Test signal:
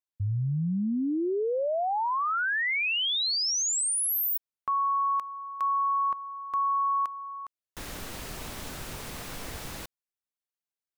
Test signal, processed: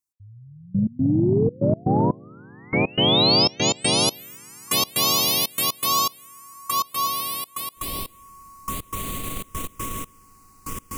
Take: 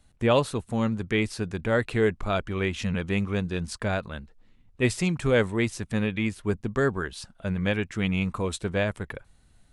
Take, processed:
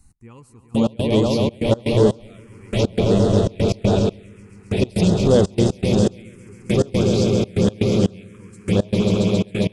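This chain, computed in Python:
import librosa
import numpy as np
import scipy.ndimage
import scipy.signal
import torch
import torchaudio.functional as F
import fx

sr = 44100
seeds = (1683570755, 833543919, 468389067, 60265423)

y = fx.echo_swell(x, sr, ms=135, loudest=8, wet_db=-8.5)
y = fx.step_gate(y, sr, bpm=121, pattern='x.....x.xxxx.x.x', floor_db=-24.0, edge_ms=4.5)
y = fx.peak_eq(y, sr, hz=1600.0, db=-12.0, octaves=0.77)
y = fx.env_phaser(y, sr, low_hz=570.0, high_hz=2300.0, full_db=-19.0)
y = fx.peak_eq(y, sr, hz=7600.0, db=4.0, octaves=1.2)
y = fx.transformer_sat(y, sr, knee_hz=160.0)
y = F.gain(torch.from_numpy(y), 8.0).numpy()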